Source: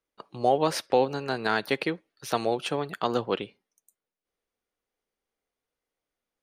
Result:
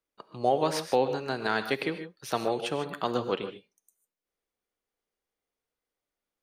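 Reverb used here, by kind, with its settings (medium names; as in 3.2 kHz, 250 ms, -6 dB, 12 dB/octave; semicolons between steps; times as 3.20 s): gated-style reverb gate 170 ms rising, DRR 9 dB; trim -2.5 dB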